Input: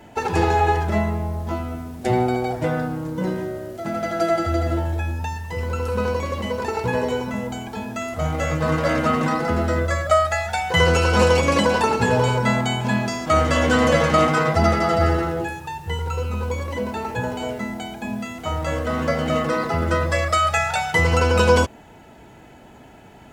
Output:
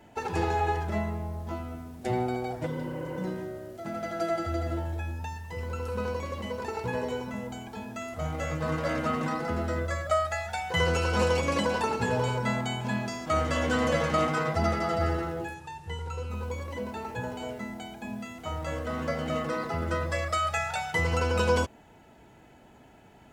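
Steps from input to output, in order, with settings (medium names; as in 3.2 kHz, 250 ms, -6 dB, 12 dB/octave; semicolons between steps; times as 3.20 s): 2.69–3.18 s: spectral replace 290–3200 Hz after; 15.54–16.30 s: Chebyshev low-pass 9 kHz, order 2; trim -9 dB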